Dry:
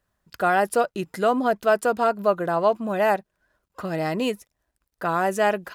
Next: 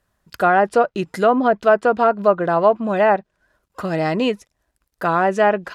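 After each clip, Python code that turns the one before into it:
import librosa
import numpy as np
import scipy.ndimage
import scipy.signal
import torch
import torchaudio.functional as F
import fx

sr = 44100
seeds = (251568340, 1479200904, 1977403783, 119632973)

y = fx.env_lowpass_down(x, sr, base_hz=2000.0, full_db=-16.0)
y = y * librosa.db_to_amplitude(5.5)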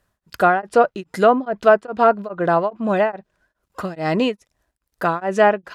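y = x * np.abs(np.cos(np.pi * 2.4 * np.arange(len(x)) / sr))
y = y * librosa.db_to_amplitude(2.0)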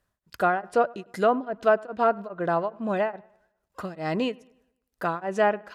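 y = fx.echo_wet_lowpass(x, sr, ms=101, feedback_pct=43, hz=2700.0, wet_db=-24.0)
y = y * librosa.db_to_amplitude(-7.5)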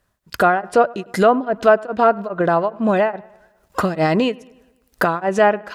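y = fx.recorder_agc(x, sr, target_db=-16.5, rise_db_per_s=18.0, max_gain_db=30)
y = y * librosa.db_to_amplitude(7.5)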